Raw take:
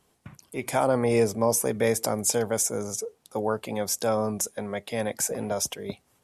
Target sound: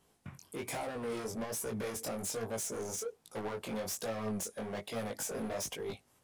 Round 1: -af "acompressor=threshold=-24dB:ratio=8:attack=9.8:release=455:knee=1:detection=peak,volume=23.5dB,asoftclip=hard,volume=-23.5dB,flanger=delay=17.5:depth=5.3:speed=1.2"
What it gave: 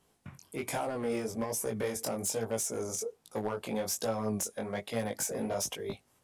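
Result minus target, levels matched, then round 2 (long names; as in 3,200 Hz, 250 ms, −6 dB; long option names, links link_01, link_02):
gain into a clipping stage and back: distortion −10 dB
-af "acompressor=threshold=-24dB:ratio=8:attack=9.8:release=455:knee=1:detection=peak,volume=32dB,asoftclip=hard,volume=-32dB,flanger=delay=17.5:depth=5.3:speed=1.2"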